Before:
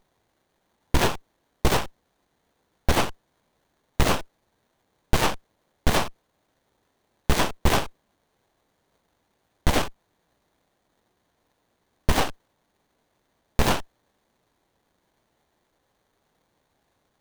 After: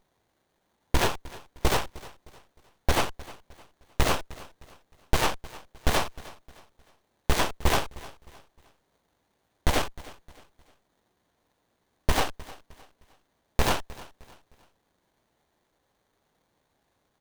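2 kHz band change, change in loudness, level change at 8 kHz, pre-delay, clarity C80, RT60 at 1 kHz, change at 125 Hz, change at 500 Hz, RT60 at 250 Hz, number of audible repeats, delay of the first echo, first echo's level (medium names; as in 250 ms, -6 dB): -2.0 dB, -3.0 dB, -2.0 dB, no reverb, no reverb, no reverb, -3.5 dB, -2.5 dB, no reverb, 2, 308 ms, -19.5 dB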